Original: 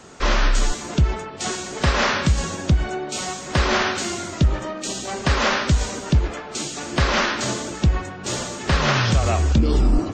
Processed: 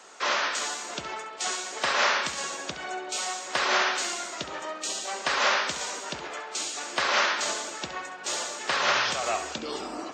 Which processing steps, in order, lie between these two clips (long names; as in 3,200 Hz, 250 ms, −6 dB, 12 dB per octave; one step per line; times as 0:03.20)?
high-pass filter 620 Hz 12 dB per octave
flutter between parallel walls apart 11.6 metres, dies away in 0.36 s
level −2.5 dB